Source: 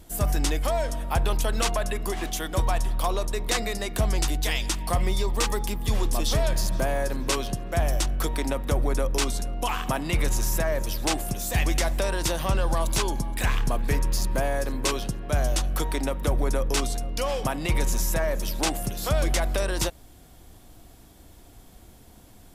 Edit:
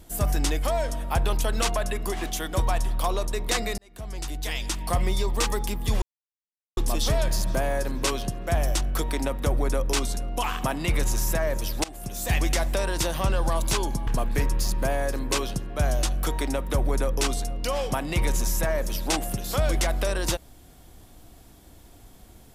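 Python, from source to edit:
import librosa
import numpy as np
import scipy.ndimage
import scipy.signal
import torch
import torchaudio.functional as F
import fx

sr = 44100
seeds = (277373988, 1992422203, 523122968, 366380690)

y = fx.edit(x, sr, fx.fade_in_span(start_s=3.78, length_s=1.16),
    fx.insert_silence(at_s=6.02, length_s=0.75),
    fx.fade_in_from(start_s=11.09, length_s=0.44, floor_db=-21.5),
    fx.cut(start_s=13.32, length_s=0.28), tone=tone)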